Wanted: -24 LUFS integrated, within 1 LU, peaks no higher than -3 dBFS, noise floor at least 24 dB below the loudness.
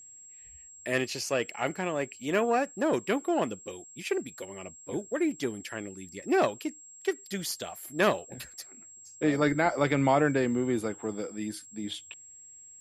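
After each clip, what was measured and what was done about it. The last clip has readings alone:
steady tone 7.6 kHz; tone level -48 dBFS; loudness -30.0 LUFS; peak level -11.5 dBFS; loudness target -24.0 LUFS
-> band-stop 7.6 kHz, Q 30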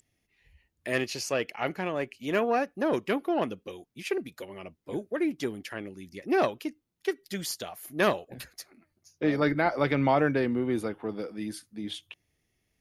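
steady tone not found; loudness -30.0 LUFS; peak level -11.5 dBFS; loudness target -24.0 LUFS
-> trim +6 dB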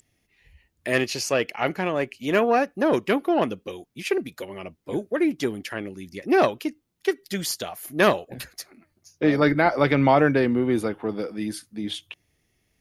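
loudness -24.0 LUFS; peak level -5.5 dBFS; noise floor -71 dBFS

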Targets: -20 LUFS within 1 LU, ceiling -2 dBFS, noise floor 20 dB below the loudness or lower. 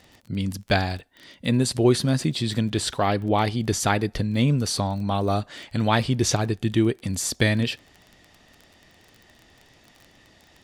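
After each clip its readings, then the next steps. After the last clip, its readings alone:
tick rate 24 per s; loudness -24.0 LUFS; peak level -5.0 dBFS; loudness target -20.0 LUFS
-> de-click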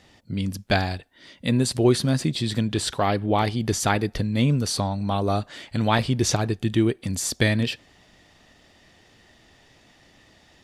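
tick rate 0 per s; loudness -24.0 LUFS; peak level -5.0 dBFS; loudness target -20.0 LUFS
-> trim +4 dB; peak limiter -2 dBFS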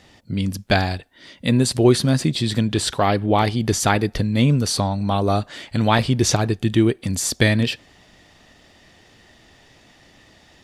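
loudness -20.0 LUFS; peak level -2.0 dBFS; noise floor -53 dBFS

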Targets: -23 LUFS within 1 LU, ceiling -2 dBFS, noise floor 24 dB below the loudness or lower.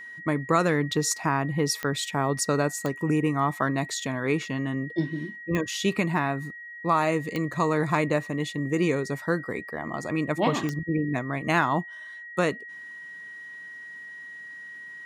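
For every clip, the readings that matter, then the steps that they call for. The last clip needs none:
clicks found 5; steady tone 1.9 kHz; tone level -39 dBFS; loudness -26.5 LUFS; peak level -9.5 dBFS; loudness target -23.0 LUFS
-> de-click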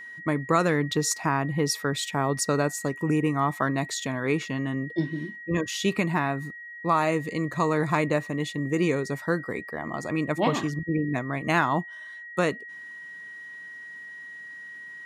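clicks found 0; steady tone 1.9 kHz; tone level -39 dBFS
-> band-stop 1.9 kHz, Q 30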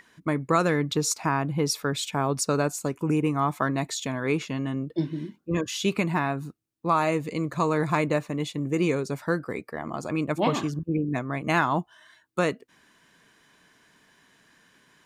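steady tone not found; loudness -27.0 LUFS; peak level -9.5 dBFS; loudness target -23.0 LUFS
-> trim +4 dB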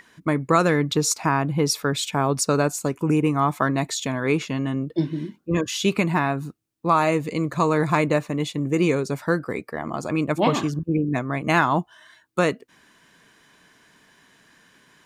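loudness -23.0 LUFS; peak level -5.5 dBFS; noise floor -59 dBFS

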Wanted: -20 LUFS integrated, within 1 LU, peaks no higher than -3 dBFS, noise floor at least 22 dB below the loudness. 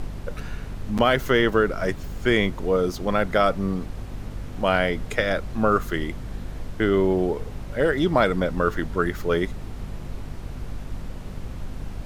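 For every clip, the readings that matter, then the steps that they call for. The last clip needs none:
hum 50 Hz; highest harmonic 250 Hz; hum level -36 dBFS; noise floor -36 dBFS; noise floor target -46 dBFS; loudness -23.5 LUFS; peak level -4.5 dBFS; loudness target -20.0 LUFS
-> de-hum 50 Hz, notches 5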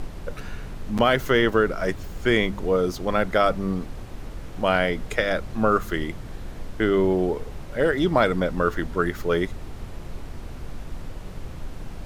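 hum not found; noise floor -37 dBFS; noise floor target -46 dBFS
-> noise print and reduce 9 dB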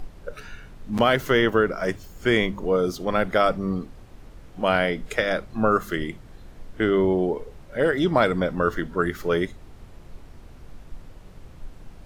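noise floor -46 dBFS; loudness -23.5 LUFS; peak level -5.5 dBFS; loudness target -20.0 LUFS
-> trim +3.5 dB; peak limiter -3 dBFS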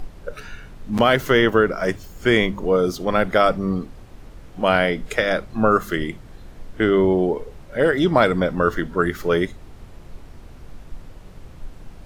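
loudness -20.0 LUFS; peak level -3.0 dBFS; noise floor -42 dBFS

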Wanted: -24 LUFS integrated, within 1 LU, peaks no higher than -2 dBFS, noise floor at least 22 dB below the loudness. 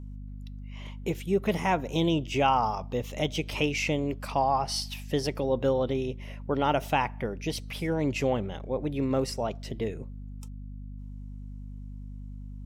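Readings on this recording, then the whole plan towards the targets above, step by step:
hum 50 Hz; highest harmonic 250 Hz; hum level -38 dBFS; loudness -29.0 LUFS; peak level -11.5 dBFS; loudness target -24.0 LUFS
-> de-hum 50 Hz, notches 5; trim +5 dB

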